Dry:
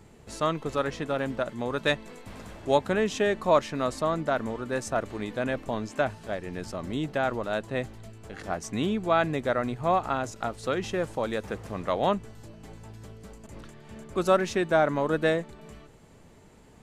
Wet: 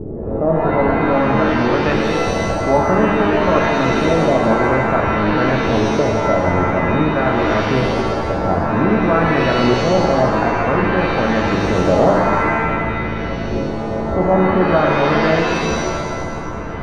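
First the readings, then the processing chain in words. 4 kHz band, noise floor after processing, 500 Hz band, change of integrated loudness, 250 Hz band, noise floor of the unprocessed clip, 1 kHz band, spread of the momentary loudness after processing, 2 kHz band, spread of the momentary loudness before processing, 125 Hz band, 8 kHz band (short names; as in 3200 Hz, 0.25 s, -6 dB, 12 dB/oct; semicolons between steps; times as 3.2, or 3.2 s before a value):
+10.5 dB, -23 dBFS, +11.5 dB, +12.0 dB, +15.0 dB, -53 dBFS, +13.0 dB, 7 LU, +13.5 dB, 22 LU, +16.0 dB, +8.0 dB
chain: per-bin compression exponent 0.6; in parallel at 0 dB: limiter -18.5 dBFS, peak gain reduction 11 dB; on the sum: RIAA curve playback; LFO low-pass saw up 0.52 Hz 380–2400 Hz; shimmer reverb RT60 1.5 s, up +7 st, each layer -2 dB, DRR 1 dB; gain -5.5 dB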